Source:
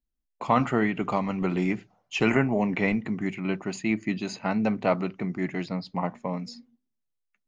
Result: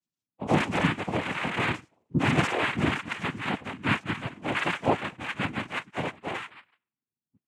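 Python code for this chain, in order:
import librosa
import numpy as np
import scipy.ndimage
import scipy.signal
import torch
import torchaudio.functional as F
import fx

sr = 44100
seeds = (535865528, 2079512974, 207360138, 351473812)

y = fx.octave_mirror(x, sr, pivot_hz=550.0)
y = fx.noise_vocoder(y, sr, seeds[0], bands=4)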